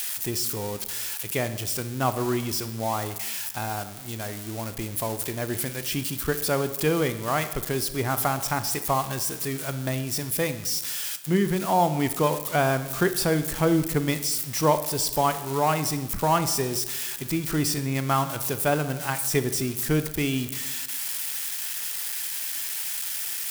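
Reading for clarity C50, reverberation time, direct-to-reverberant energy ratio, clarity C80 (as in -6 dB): 12.0 dB, 1.0 s, 10.5 dB, 14.0 dB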